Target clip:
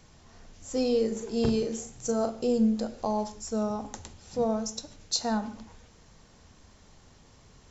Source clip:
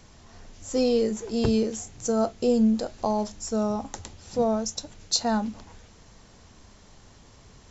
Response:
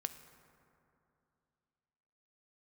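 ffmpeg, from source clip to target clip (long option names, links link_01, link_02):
-filter_complex "[0:a]asettb=1/sr,asplit=3[link_01][link_02][link_03];[link_01]atrim=end=1.074[link_04];[link_02]atrim=start=1.07:end=2.41,asetpts=PTS-STARTPTS,afade=type=in:duration=0.004:curve=qsin,afade=type=out:start_time=1.336:duration=0.004:curve=qsin,asplit=2[link_05][link_06];[link_06]adelay=39,volume=-7dB[link_07];[link_05][link_07]amix=inputs=2:normalize=0,atrim=end_sample=59094[link_08];[link_03]atrim=start=2.406[link_09];[link_04][link_08]acrossfade=duration=0.004:curve1=hsin:curve2=qsin[link_10];[link_10][link_09]acrossfade=duration=0.004:curve1=qsin:curve2=hsin[link_11];[1:a]atrim=start_sample=2205,afade=type=out:start_time=0.22:duration=0.01,atrim=end_sample=10143[link_12];[link_11][link_12]afir=irnorm=-1:irlink=0,volume=-2.5dB"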